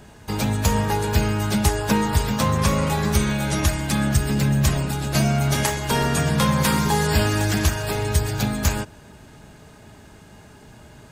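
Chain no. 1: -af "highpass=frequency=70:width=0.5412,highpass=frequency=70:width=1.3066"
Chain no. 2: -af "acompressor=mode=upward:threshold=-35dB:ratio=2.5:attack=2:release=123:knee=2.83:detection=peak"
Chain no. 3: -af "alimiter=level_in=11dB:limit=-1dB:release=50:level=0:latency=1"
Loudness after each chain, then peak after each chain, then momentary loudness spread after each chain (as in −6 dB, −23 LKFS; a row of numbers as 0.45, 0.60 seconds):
−21.5, −21.5, −11.5 LKFS; −5.5, −5.5, −1.0 dBFS; 5, 4, 3 LU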